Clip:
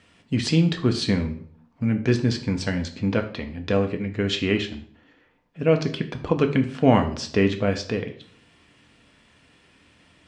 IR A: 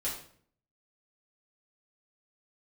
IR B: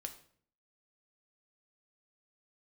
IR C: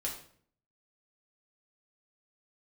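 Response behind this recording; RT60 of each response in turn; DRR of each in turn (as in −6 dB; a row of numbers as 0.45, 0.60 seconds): B; 0.55, 0.55, 0.55 seconds; −7.5, 5.0, −3.0 decibels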